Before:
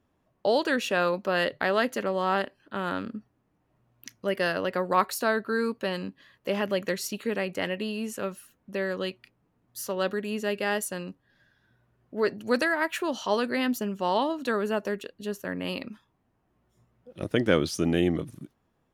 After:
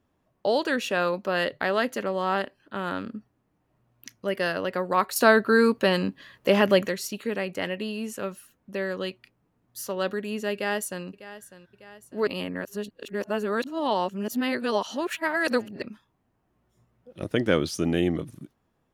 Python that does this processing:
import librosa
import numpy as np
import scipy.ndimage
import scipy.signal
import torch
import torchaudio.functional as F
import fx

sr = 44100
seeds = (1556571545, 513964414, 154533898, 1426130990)

y = fx.echo_throw(x, sr, start_s=10.53, length_s=0.52, ms=600, feedback_pct=55, wet_db=-15.0)
y = fx.edit(y, sr, fx.clip_gain(start_s=5.16, length_s=1.72, db=8.0),
    fx.reverse_span(start_s=12.27, length_s=3.55), tone=tone)